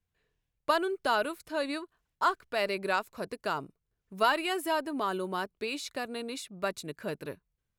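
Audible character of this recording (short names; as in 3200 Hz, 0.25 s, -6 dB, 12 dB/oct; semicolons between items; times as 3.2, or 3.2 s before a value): noise floor -84 dBFS; spectral tilt -3.5 dB/oct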